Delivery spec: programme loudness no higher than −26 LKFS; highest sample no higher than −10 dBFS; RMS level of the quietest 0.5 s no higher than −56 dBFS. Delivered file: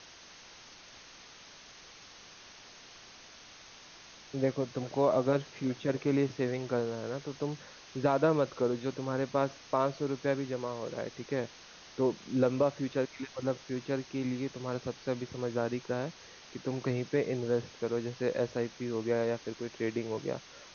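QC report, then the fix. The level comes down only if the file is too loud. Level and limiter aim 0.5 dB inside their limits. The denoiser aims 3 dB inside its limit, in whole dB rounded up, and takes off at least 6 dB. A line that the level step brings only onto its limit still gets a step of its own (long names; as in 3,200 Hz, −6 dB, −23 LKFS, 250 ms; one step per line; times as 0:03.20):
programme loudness −33.0 LKFS: in spec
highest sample −15.0 dBFS: in spec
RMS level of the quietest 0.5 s −53 dBFS: out of spec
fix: broadband denoise 6 dB, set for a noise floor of −53 dBFS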